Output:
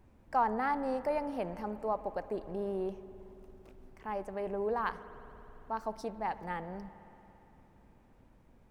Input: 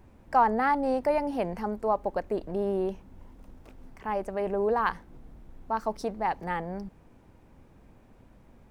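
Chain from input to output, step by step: spring tank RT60 3.5 s, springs 56 ms, chirp 30 ms, DRR 13.5 dB; trim -7 dB

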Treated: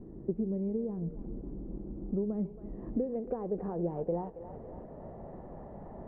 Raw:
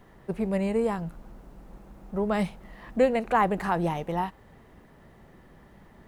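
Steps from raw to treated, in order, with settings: compression 6:1, threshold -39 dBFS, peak gain reduction 21 dB; low-pass sweep 330 Hz -> 680 Hz, 2.46–5.29 s; thinning echo 275 ms, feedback 80%, high-pass 770 Hz, level -9 dB; on a send at -22 dB: reverberation RT60 0.35 s, pre-delay 57 ms; on the sum: trim +5.5 dB

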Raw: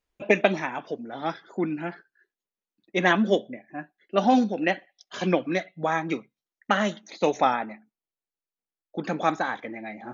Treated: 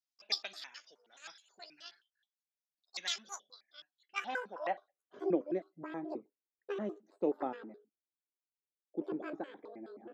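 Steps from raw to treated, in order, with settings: pitch shift switched off and on +12 st, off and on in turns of 106 ms; band-pass sweep 5.2 kHz -> 350 Hz, 3.94–5.07 s; trim -4 dB

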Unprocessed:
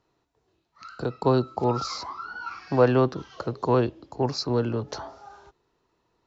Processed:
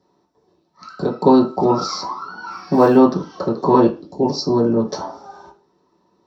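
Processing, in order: 2.51–2.97 s: modulation noise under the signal 32 dB; 3.87–4.79 s: peaking EQ 710 Hz -> 3.7 kHz -14 dB 1.1 oct; reverberation RT60 0.30 s, pre-delay 3 ms, DRR -5 dB; trim -3.5 dB

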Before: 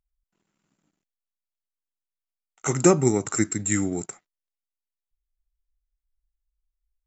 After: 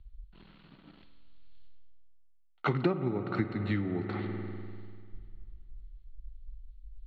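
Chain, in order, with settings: rippled Chebyshev low-pass 4.4 kHz, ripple 3 dB; reverse; upward compressor, threshold -34 dBFS; reverse; bass shelf 230 Hz +7.5 dB; on a send at -8 dB: reverberation RT60 3.2 s, pre-delay 49 ms; on the sum: compression 12:1, threshold -32 dBFS, peak gain reduction 21.5 dB; three bands expanded up and down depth 70%; trim +3.5 dB

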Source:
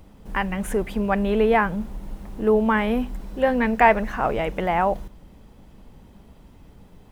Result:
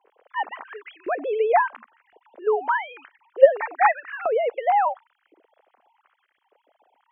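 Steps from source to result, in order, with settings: formants replaced by sine waves; LFO high-pass saw up 0.94 Hz 370–1900 Hz; trim -3.5 dB

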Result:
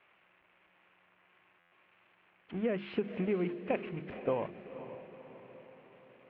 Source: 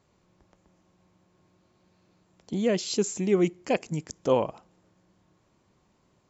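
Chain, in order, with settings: zero-crossing glitches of -19.5 dBFS; gate -26 dBFS, range -22 dB; steep low-pass 2.7 kHz 48 dB/octave; hum notches 50/100/150/200/250/300/350 Hz; compression 6:1, threshold -29 dBFS, peak gain reduction 11 dB; echo that smears into a reverb 495 ms, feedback 53%, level -12 dB; buffer glitch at 1.59 s, samples 512, times 10

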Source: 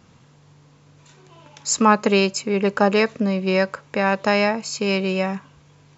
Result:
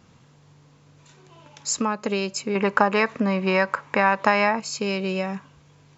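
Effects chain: compression 6:1, threshold -19 dBFS, peak gain reduction 10 dB; 2.55–4.60 s: graphic EQ 250/1000/2000 Hz +3/+11/+7 dB; trim -2 dB

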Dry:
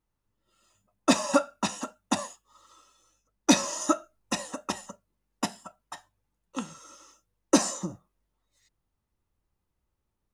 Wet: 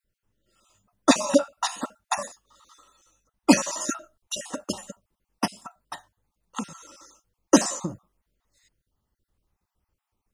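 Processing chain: random holes in the spectrogram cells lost 30%; trim +4.5 dB

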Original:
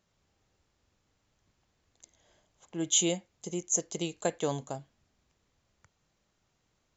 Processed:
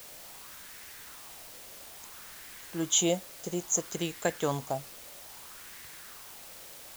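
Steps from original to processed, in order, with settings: bass shelf 61 Hz +12 dB; word length cut 8-bit, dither triangular; sweeping bell 0.6 Hz 530–1900 Hz +8 dB

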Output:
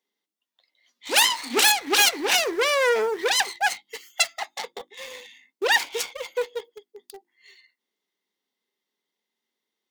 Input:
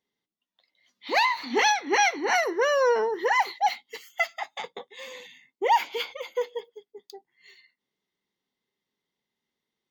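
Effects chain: self-modulated delay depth 0.37 ms; high-pass 220 Hz 24 dB/octave; treble shelf 3.3 kHz +3.5 dB; hum notches 50/100/150/200/250/300/350 Hz; in parallel at -10.5 dB: bit crusher 6-bit

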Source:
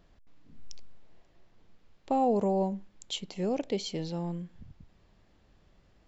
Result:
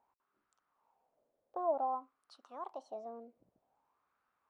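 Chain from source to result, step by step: speed mistake 33 rpm record played at 45 rpm; wah-wah 0.53 Hz 550–1300 Hz, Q 4.5; trim -1 dB

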